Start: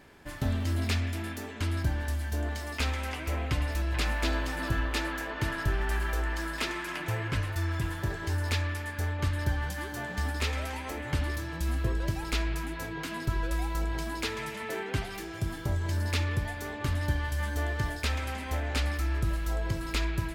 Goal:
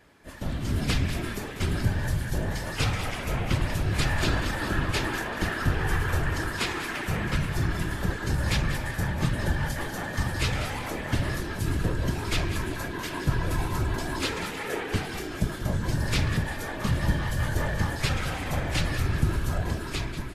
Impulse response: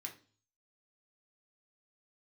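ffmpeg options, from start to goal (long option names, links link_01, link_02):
-filter_complex "[0:a]dynaudnorm=framelen=120:gausssize=11:maxgain=6.5dB,afftfilt=real='hypot(re,im)*cos(2*PI*random(0))':imag='hypot(re,im)*sin(2*PI*random(1))':win_size=512:overlap=0.75,asplit=2[link_01][link_02];[link_02]asplit=4[link_03][link_04][link_05][link_06];[link_03]adelay=192,afreqshift=-88,volume=-11dB[link_07];[link_04]adelay=384,afreqshift=-176,volume=-19.2dB[link_08];[link_05]adelay=576,afreqshift=-264,volume=-27.4dB[link_09];[link_06]adelay=768,afreqshift=-352,volume=-35.5dB[link_10];[link_07][link_08][link_09][link_10]amix=inputs=4:normalize=0[link_11];[link_01][link_11]amix=inputs=2:normalize=0,volume=3dB" -ar 48000 -c:a libvorbis -b:a 32k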